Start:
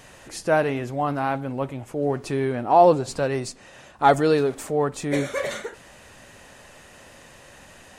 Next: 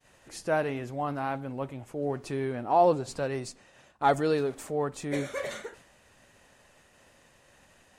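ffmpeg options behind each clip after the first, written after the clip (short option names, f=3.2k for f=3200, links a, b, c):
-af "agate=range=-33dB:threshold=-42dB:ratio=3:detection=peak,volume=-7dB"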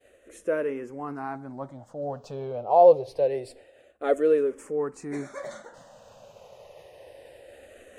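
-filter_complex "[0:a]equalizer=f=520:t=o:w=1.1:g=14,areverse,acompressor=mode=upward:threshold=-33dB:ratio=2.5,areverse,asplit=2[a][b];[b]afreqshift=-0.26[c];[a][c]amix=inputs=2:normalize=1,volume=-4dB"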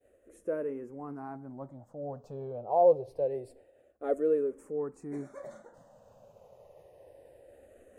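-af "equalizer=f=3.5k:w=0.4:g=-15,volume=-4dB"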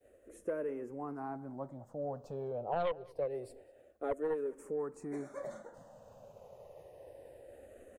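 -filter_complex "[0:a]aeval=exprs='0.211*(cos(1*acos(clip(val(0)/0.211,-1,1)))-cos(1*PI/2))+0.0668*(cos(4*acos(clip(val(0)/0.211,-1,1)))-cos(4*PI/2))+0.0376*(cos(6*acos(clip(val(0)/0.211,-1,1)))-cos(6*PI/2))+0.00168*(cos(7*acos(clip(val(0)/0.211,-1,1)))-cos(7*PI/2))+0.00299*(cos(8*acos(clip(val(0)/0.211,-1,1)))-cos(8*PI/2))':c=same,acrossover=split=360|860[a][b][c];[a]acompressor=threshold=-48dB:ratio=4[d];[b]acompressor=threshold=-40dB:ratio=4[e];[c]acompressor=threshold=-48dB:ratio=4[f];[d][e][f]amix=inputs=3:normalize=0,asplit=2[g][h];[h]adelay=204.1,volume=-23dB,highshelf=f=4k:g=-4.59[i];[g][i]amix=inputs=2:normalize=0,volume=2.5dB"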